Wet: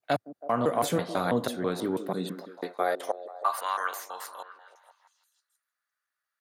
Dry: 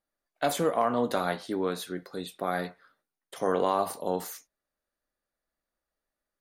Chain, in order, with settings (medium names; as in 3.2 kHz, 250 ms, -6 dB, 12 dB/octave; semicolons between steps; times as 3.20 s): slices played last to first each 164 ms, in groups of 3; high-pass sweep 110 Hz -> 1.4 kHz, 1.89–3.63 s; repeats whose band climbs or falls 162 ms, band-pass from 290 Hz, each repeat 0.7 oct, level -9 dB